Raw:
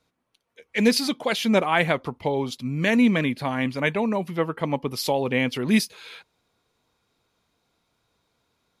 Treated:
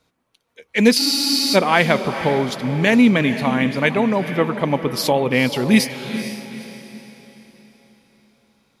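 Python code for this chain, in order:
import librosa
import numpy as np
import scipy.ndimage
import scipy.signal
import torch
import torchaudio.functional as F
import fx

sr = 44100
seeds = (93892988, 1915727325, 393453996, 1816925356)

y = fx.echo_diffused(x, sr, ms=463, feedback_pct=42, wet_db=-10.5)
y = fx.spec_freeze(y, sr, seeds[0], at_s=0.99, hold_s=0.56)
y = y * 10.0 ** (5.5 / 20.0)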